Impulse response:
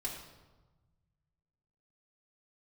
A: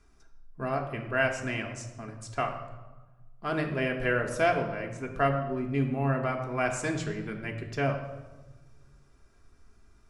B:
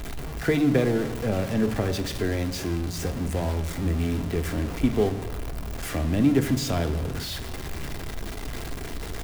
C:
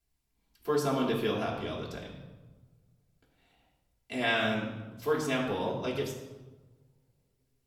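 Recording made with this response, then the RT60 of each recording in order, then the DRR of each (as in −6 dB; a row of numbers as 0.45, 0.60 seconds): C; 1.2, 1.3, 1.2 seconds; 1.0, 6.5, −6.0 decibels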